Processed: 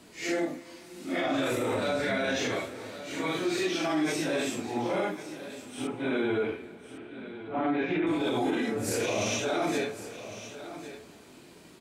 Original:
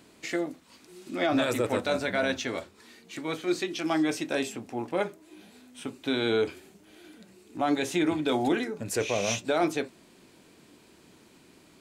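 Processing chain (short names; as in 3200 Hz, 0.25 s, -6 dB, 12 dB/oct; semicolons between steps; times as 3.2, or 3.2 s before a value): phase scrambler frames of 0.2 s; 5.87–8.07 LPF 2700 Hz 24 dB/oct; limiter -24 dBFS, peak gain reduction 11 dB; echo 1.105 s -13.5 dB; on a send at -16 dB: reverb RT60 4.9 s, pre-delay 82 ms; on the sum: gain +3.5 dB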